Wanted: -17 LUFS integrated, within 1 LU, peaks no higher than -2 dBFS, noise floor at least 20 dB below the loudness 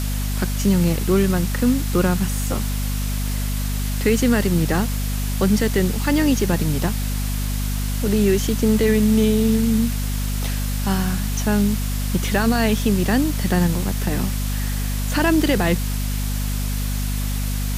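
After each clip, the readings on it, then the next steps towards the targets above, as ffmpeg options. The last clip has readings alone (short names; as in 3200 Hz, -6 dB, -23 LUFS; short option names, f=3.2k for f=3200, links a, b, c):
hum 50 Hz; harmonics up to 250 Hz; hum level -21 dBFS; noise floor -23 dBFS; noise floor target -41 dBFS; loudness -21.0 LUFS; peak -6.0 dBFS; loudness target -17.0 LUFS
-> -af "bandreject=f=50:t=h:w=6,bandreject=f=100:t=h:w=6,bandreject=f=150:t=h:w=6,bandreject=f=200:t=h:w=6,bandreject=f=250:t=h:w=6"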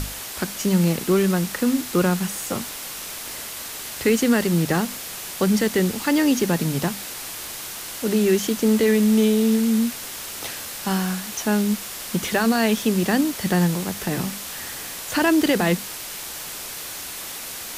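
hum none; noise floor -34 dBFS; noise floor target -43 dBFS
-> -af "afftdn=nr=9:nf=-34"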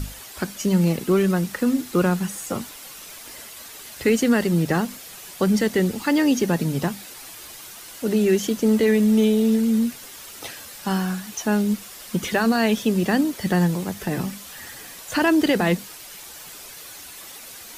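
noise floor -41 dBFS; noise floor target -42 dBFS
-> -af "afftdn=nr=6:nf=-41"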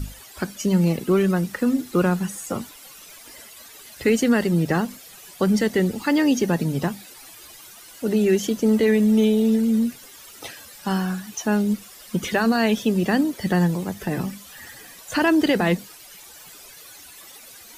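noise floor -45 dBFS; loudness -22.0 LUFS; peak -8.5 dBFS; loudness target -17.0 LUFS
-> -af "volume=5dB"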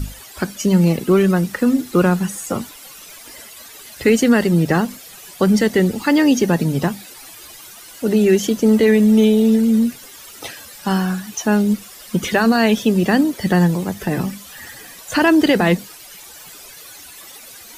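loudness -17.0 LUFS; peak -3.5 dBFS; noise floor -40 dBFS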